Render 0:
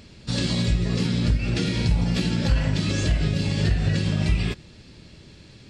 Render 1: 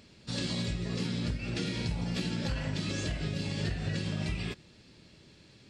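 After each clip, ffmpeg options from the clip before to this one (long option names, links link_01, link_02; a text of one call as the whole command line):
ffmpeg -i in.wav -af "lowshelf=frequency=90:gain=-10.5,volume=-7.5dB" out.wav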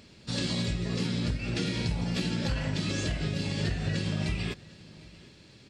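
ffmpeg -i in.wav -af "aecho=1:1:752:0.0794,volume=3dB" out.wav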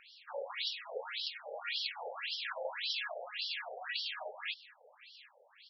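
ffmpeg -i in.wav -af "afftfilt=real='re*between(b*sr/1024,600*pow(4100/600,0.5+0.5*sin(2*PI*1.8*pts/sr))/1.41,600*pow(4100/600,0.5+0.5*sin(2*PI*1.8*pts/sr))*1.41)':imag='im*between(b*sr/1024,600*pow(4100/600,0.5+0.5*sin(2*PI*1.8*pts/sr))/1.41,600*pow(4100/600,0.5+0.5*sin(2*PI*1.8*pts/sr))*1.41)':win_size=1024:overlap=0.75,volume=4dB" out.wav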